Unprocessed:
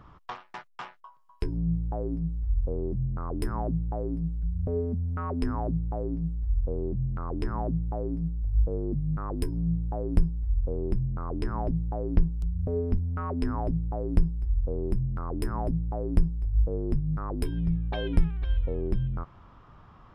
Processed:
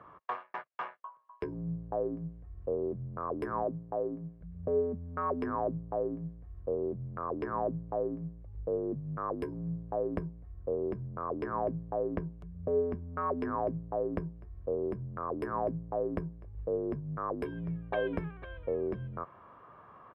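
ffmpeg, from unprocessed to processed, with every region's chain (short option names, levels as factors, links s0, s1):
-filter_complex "[0:a]asettb=1/sr,asplit=3[s0][s1][s2];[s0]atrim=end=3.634[s3];[s1]atrim=start=3.63:end=4.41,asetpts=PTS-STARTPTS,afade=t=in:d=0.004:c=qsin,afade=t=out:st=0.776:d=0.004:c=qsin,highpass=f=150:p=1,highshelf=f=3200:g=-11.5[s4];[s2]atrim=start=4.406[s5];[s3][s4]acrossfade=d=0.004:c1=hsin:c2=qsin[s6];[s6][s5]acrossfade=d=0.004:c1=qsin:c2=hsin,highpass=100,acrossover=split=250 2300:gain=0.2 1 0.0631[s7][s8][s9];[s7][s8][s9]amix=inputs=3:normalize=0,aecho=1:1:1.8:0.34,volume=1.33"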